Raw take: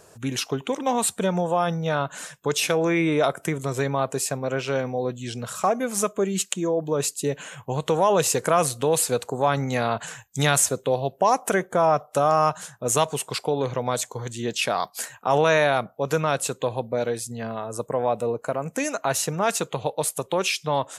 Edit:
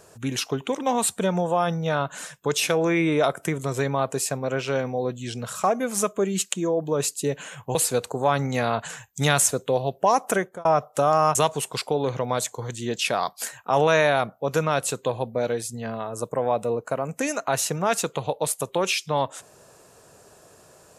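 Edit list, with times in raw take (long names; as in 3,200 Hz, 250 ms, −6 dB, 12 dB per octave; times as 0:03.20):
0:07.75–0:08.93: remove
0:11.52–0:11.83: fade out
0:12.53–0:12.92: remove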